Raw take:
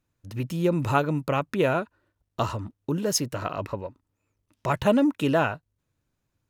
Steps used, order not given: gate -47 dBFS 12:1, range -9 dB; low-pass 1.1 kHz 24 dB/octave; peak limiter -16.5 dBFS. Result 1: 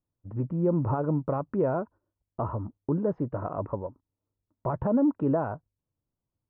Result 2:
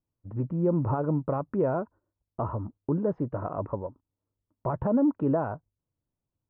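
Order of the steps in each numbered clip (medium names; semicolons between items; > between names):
peak limiter > gate > low-pass; gate > peak limiter > low-pass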